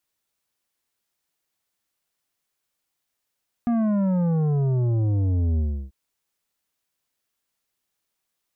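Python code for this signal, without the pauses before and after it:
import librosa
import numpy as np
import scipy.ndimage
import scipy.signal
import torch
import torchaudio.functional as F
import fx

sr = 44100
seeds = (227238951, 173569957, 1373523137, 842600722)

y = fx.sub_drop(sr, level_db=-20.0, start_hz=240.0, length_s=2.24, drive_db=9.5, fade_s=0.33, end_hz=65.0)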